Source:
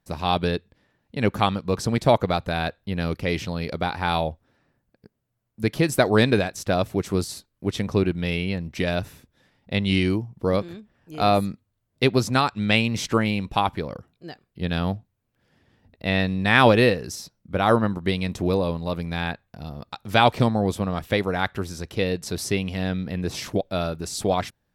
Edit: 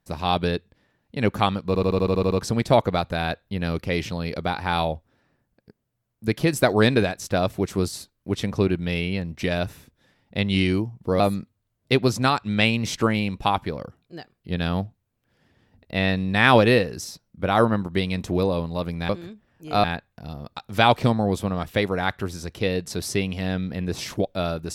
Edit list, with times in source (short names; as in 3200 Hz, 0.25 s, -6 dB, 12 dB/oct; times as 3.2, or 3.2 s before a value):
1.67 stutter 0.08 s, 9 plays
10.56–11.31 move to 19.2